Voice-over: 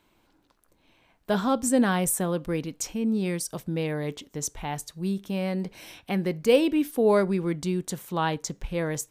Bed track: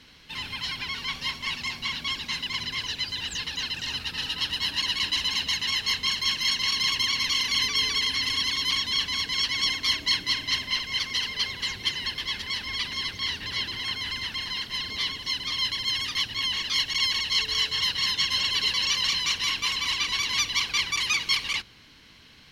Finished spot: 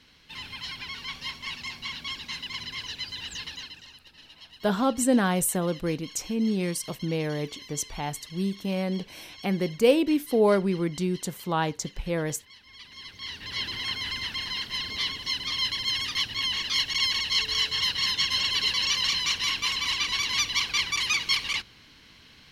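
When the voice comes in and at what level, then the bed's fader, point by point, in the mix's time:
3.35 s, 0.0 dB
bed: 3.48 s -5 dB
4.00 s -21 dB
12.61 s -21 dB
13.67 s -0.5 dB

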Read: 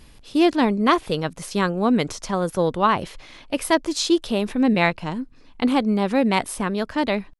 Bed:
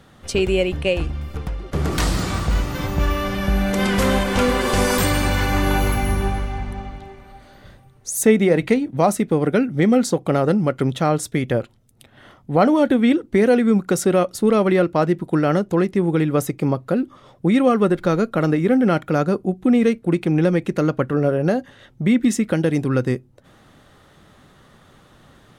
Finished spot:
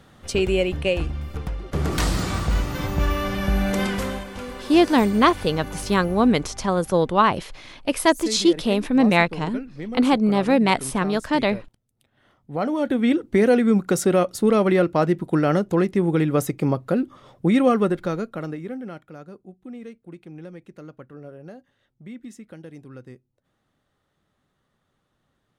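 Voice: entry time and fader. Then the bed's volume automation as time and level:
4.35 s, +1.5 dB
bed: 3.76 s -2 dB
4.35 s -16.5 dB
12.11 s -16.5 dB
13.21 s -1.5 dB
17.72 s -1.5 dB
19.15 s -22 dB

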